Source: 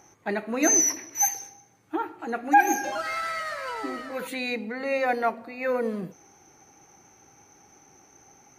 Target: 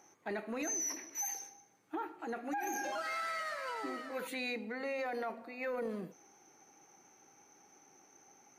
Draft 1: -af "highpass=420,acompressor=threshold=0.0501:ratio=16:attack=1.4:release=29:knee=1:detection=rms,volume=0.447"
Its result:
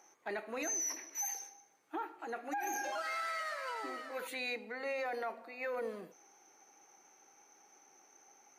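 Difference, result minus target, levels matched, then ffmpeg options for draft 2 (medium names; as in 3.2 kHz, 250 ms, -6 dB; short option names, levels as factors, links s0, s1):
250 Hz band -5.5 dB
-af "highpass=200,acompressor=threshold=0.0501:ratio=16:attack=1.4:release=29:knee=1:detection=rms,volume=0.447"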